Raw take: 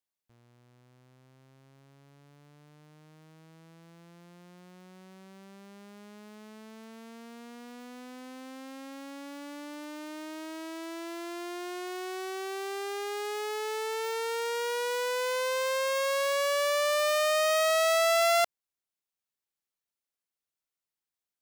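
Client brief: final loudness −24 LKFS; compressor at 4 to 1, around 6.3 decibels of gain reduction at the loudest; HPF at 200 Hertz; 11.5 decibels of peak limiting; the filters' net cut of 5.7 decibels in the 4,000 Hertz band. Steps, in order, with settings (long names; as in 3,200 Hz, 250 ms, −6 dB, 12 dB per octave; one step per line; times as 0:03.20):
high-pass filter 200 Hz
parametric band 4,000 Hz −7.5 dB
downward compressor 4 to 1, threshold −30 dBFS
level +22 dB
brickwall limiter −15 dBFS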